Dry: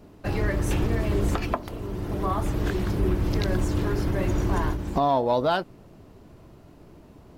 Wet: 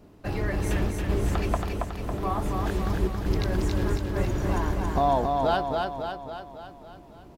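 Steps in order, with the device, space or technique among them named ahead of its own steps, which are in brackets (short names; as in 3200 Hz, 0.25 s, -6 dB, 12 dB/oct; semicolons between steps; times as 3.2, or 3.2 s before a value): dynamic EQ 750 Hz, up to +5 dB, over -40 dBFS, Q 5.5; trance gate with a delay (step gate "xxxxx.xxxx.x" 83 bpm; feedback echo 0.276 s, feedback 57%, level -3.5 dB); gain -3 dB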